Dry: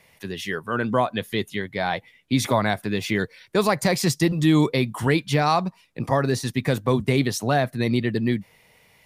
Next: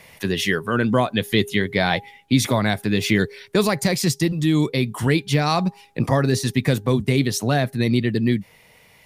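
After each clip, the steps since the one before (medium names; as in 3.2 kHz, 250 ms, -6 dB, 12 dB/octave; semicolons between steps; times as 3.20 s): de-hum 407.1 Hz, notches 2; dynamic bell 910 Hz, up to -7 dB, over -35 dBFS, Q 0.73; gain riding within 5 dB 0.5 s; trim +4.5 dB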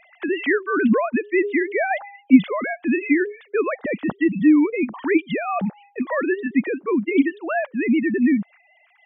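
formants replaced by sine waves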